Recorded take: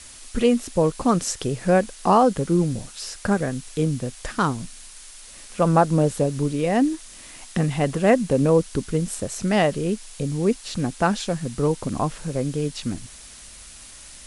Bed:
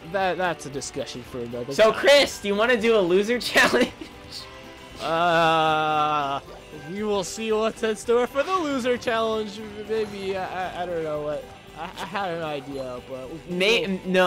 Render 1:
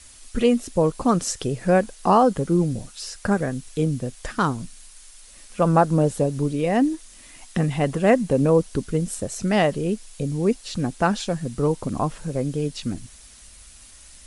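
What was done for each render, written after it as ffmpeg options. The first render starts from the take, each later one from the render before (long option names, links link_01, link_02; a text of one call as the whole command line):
ffmpeg -i in.wav -af "afftdn=noise_reduction=6:noise_floor=-43" out.wav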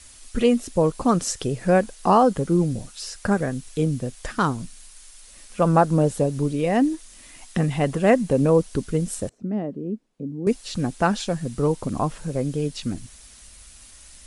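ffmpeg -i in.wav -filter_complex "[0:a]asettb=1/sr,asplit=3[link_01][link_02][link_03];[link_01]atrim=end=9.294[link_04];[link_02]atrim=start=9.29:end=10.47,asetpts=PTS-STARTPTS,afade=type=in:duration=0.004:curve=qsin,afade=type=out:start_time=1.176:duration=0.004:curve=qsin,bandpass=frequency=260:width_type=q:width=2.3[link_05];[link_03]atrim=start=10.466[link_06];[link_04][link_05]acrossfade=duration=0.004:curve1=hsin:curve2=qsin[link_07];[link_07][link_06]acrossfade=duration=0.004:curve1=qsin:curve2=hsin" out.wav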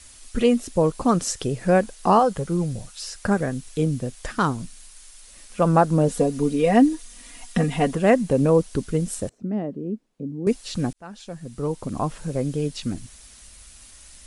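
ffmpeg -i in.wav -filter_complex "[0:a]asettb=1/sr,asplit=3[link_01][link_02][link_03];[link_01]atrim=end=2.194[link_04];[link_02]atrim=start=2.19:end=3.13,asetpts=PTS-STARTPTS,afade=type=in:duration=0.004:curve=qsin,afade=type=out:start_time=0.936:duration=0.004:curve=qsin,equalizer=frequency=280:width=1.5:gain=-8.5[link_05];[link_03]atrim=start=3.126[link_06];[link_04][link_05]acrossfade=duration=0.004:curve1=hsin:curve2=qsin[link_07];[link_07][link_06]acrossfade=duration=0.004:curve1=qsin:curve2=hsin,asettb=1/sr,asplit=3[link_08][link_09][link_10];[link_08]atrim=end=6.084[link_11];[link_09]atrim=start=6.08:end=7.94,asetpts=PTS-STARTPTS,afade=type=in:duration=0.004:curve=qsin,afade=type=out:start_time=1.856:duration=0.004:curve=qsin,aecho=1:1:4.2:0.8,atrim=end_sample=82026[link_12];[link_10]atrim=start=7.936[link_13];[link_11][link_12]acrossfade=duration=0.004:curve1=hsin:curve2=qsin[link_14];[link_14][link_13]acrossfade=duration=0.004:curve1=qsin:curve2=hsin,asplit=2[link_15][link_16];[link_15]atrim=end=10.93,asetpts=PTS-STARTPTS,afade=type=out:start_time=10.926:duration=0.004:curve=hsin[link_17];[link_16]atrim=start=10.93,asetpts=PTS-STARTPTS,afade=type=in:duration=1.3[link_18];[link_17][link_18]concat=n=2:v=0:a=1" out.wav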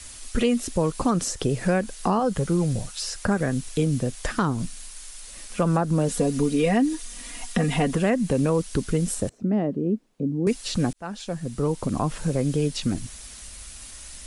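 ffmpeg -i in.wav -filter_complex "[0:a]acrossover=split=380|1100[link_01][link_02][link_03];[link_01]acompressor=threshold=-25dB:ratio=4[link_04];[link_02]acompressor=threshold=-32dB:ratio=4[link_05];[link_03]acompressor=threshold=-33dB:ratio=4[link_06];[link_04][link_05][link_06]amix=inputs=3:normalize=0,asplit=2[link_07][link_08];[link_08]alimiter=limit=-21.5dB:level=0:latency=1:release=120,volume=-1dB[link_09];[link_07][link_09]amix=inputs=2:normalize=0" out.wav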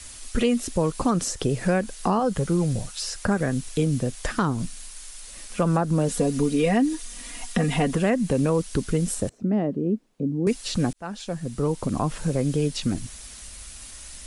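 ffmpeg -i in.wav -af anull out.wav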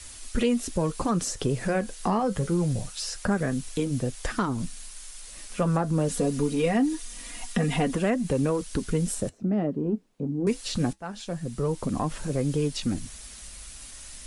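ffmpeg -i in.wav -filter_complex "[0:a]asplit=2[link_01][link_02];[link_02]asoftclip=type=tanh:threshold=-21dB,volume=-10dB[link_03];[link_01][link_03]amix=inputs=2:normalize=0,flanger=delay=2.1:depth=7.5:regen=-67:speed=0.24:shape=triangular" out.wav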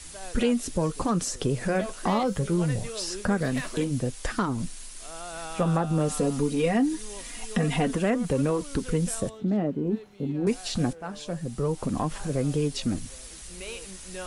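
ffmpeg -i in.wav -i bed.wav -filter_complex "[1:a]volume=-19.5dB[link_01];[0:a][link_01]amix=inputs=2:normalize=0" out.wav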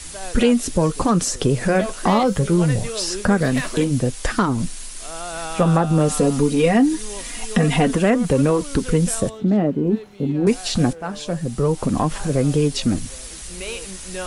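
ffmpeg -i in.wav -af "volume=8dB" out.wav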